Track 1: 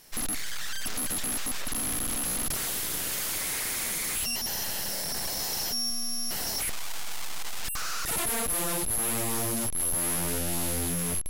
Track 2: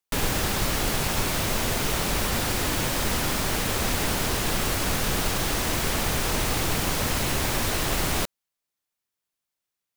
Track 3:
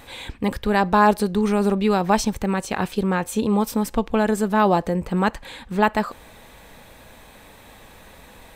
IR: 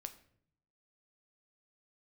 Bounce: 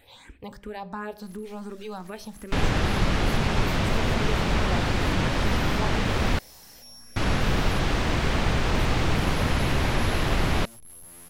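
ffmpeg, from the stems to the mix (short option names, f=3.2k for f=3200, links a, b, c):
-filter_complex "[0:a]alimiter=level_in=10.5dB:limit=-24dB:level=0:latency=1,volume=-10.5dB,aeval=exprs='val(0)+0.00178*(sin(2*PI*60*n/s)+sin(2*PI*2*60*n/s)/2+sin(2*PI*3*60*n/s)/3+sin(2*PI*4*60*n/s)/4+sin(2*PI*5*60*n/s)/5)':c=same,adelay=1100,volume=-9dB,asplit=2[a][b];[b]volume=-9dB[c];[1:a]lowpass=5.2k,bass=f=250:g=4,treble=f=4k:g=-6,adelay=2400,volume=1dB,asplit=3[d][e][f];[d]atrim=end=6.39,asetpts=PTS-STARTPTS,afade=t=out:st=6.386:d=0.004:c=hsin[g];[e]atrim=start=6.39:end=7.16,asetpts=PTS-STARTPTS,volume=0[h];[f]atrim=start=7.16,asetpts=PTS-STARTPTS,afade=t=in:d=0.004:c=hsin[i];[g][h][i]concat=n=3:v=0:a=1[j];[2:a]asplit=2[k][l];[l]afreqshift=2.8[m];[k][m]amix=inputs=2:normalize=1,volume=-12dB,asplit=3[n][o][p];[o]volume=-4dB[q];[p]apad=whole_len=546831[r];[a][r]sidechaincompress=threshold=-41dB:ratio=8:attack=16:release=118[s];[s][n]amix=inputs=2:normalize=0,bandreject=f=66.56:t=h:w=4,bandreject=f=133.12:t=h:w=4,bandreject=f=199.68:t=h:w=4,bandreject=f=266.24:t=h:w=4,bandreject=f=332.8:t=h:w=4,bandreject=f=399.36:t=h:w=4,bandreject=f=465.92:t=h:w=4,bandreject=f=532.48:t=h:w=4,bandreject=f=599.04:t=h:w=4,bandreject=f=665.6:t=h:w=4,bandreject=f=732.16:t=h:w=4,acompressor=threshold=-39dB:ratio=6,volume=0dB[t];[3:a]atrim=start_sample=2205[u];[c][q]amix=inputs=2:normalize=0[v];[v][u]afir=irnorm=-1:irlink=0[w];[j][t][w]amix=inputs=3:normalize=0"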